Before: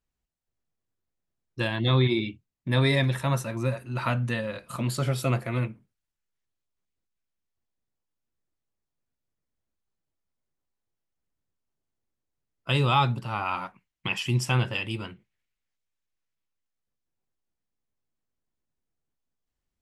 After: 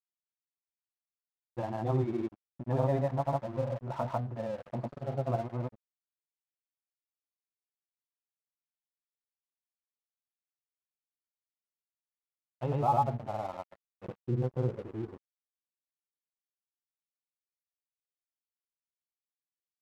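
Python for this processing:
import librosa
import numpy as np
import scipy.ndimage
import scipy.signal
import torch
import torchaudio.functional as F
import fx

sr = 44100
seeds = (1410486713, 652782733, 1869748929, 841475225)

y = fx.filter_sweep_lowpass(x, sr, from_hz=760.0, to_hz=370.0, start_s=12.69, end_s=15.39, q=4.9)
y = fx.granulator(y, sr, seeds[0], grain_ms=100.0, per_s=20.0, spray_ms=100.0, spread_st=0)
y = np.sign(y) * np.maximum(np.abs(y) - 10.0 ** (-41.5 / 20.0), 0.0)
y = y * 10.0 ** (-6.5 / 20.0)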